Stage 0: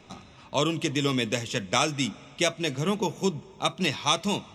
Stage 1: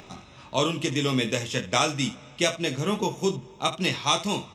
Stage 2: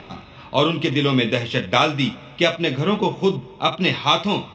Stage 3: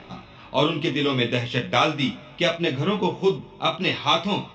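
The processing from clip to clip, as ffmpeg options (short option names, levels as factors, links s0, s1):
-filter_complex "[0:a]acompressor=mode=upward:threshold=0.00708:ratio=2.5,asplit=2[s0][s1];[s1]aecho=0:1:23|75:0.501|0.188[s2];[s0][s2]amix=inputs=2:normalize=0"
-af "lowpass=f=4200:w=0.5412,lowpass=f=4200:w=1.3066,volume=2.11"
-af "flanger=delay=16:depth=4.1:speed=0.69"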